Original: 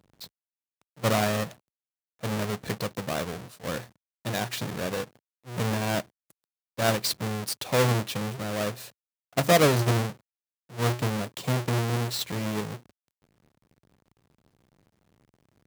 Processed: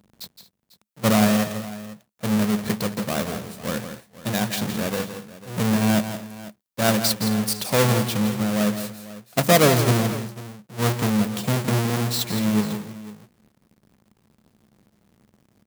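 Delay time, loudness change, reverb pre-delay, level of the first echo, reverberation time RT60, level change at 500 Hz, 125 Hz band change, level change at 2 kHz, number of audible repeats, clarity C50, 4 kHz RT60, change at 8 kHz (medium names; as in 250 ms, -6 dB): 167 ms, +5.5 dB, no reverb, -9.5 dB, no reverb, +3.5 dB, +4.5 dB, +4.0 dB, 3, no reverb, no reverb, +6.5 dB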